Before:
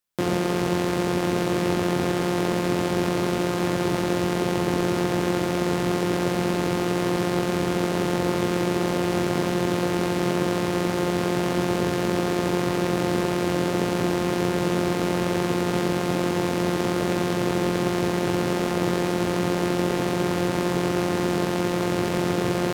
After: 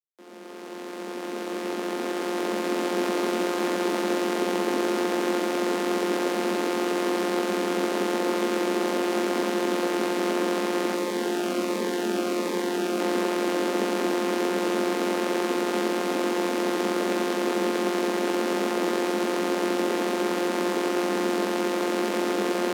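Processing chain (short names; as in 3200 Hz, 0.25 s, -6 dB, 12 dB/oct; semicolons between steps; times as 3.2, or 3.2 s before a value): opening faded in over 3.13 s; Chebyshev high-pass 190 Hz, order 10; 10.96–13 cascading phaser falling 1.4 Hz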